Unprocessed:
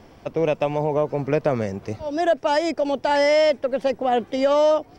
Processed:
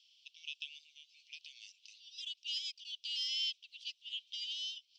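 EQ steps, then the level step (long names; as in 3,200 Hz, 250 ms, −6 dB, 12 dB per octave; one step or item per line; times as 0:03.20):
Butterworth high-pass 2,900 Hz 72 dB per octave
high-frequency loss of the air 140 metres
high-shelf EQ 5,700 Hz −10.5 dB
+5.0 dB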